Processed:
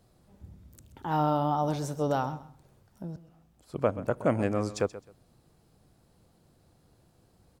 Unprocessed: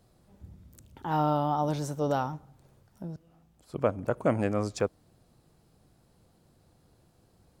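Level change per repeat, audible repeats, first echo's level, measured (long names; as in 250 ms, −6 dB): −13.5 dB, 2, −15.5 dB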